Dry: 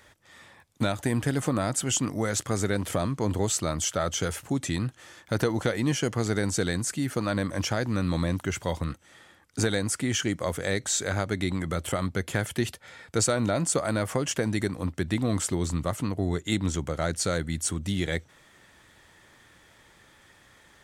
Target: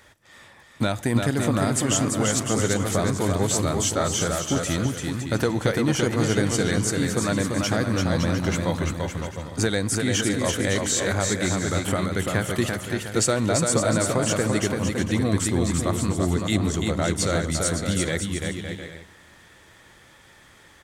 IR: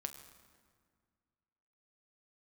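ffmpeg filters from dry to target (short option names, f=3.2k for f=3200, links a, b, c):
-filter_complex "[0:a]aecho=1:1:340|561|704.6|798|858.7:0.631|0.398|0.251|0.158|0.1,asplit=2[a][b];[1:a]atrim=start_sample=2205[c];[b][c]afir=irnorm=-1:irlink=0,volume=-6.5dB[d];[a][d]amix=inputs=2:normalize=0"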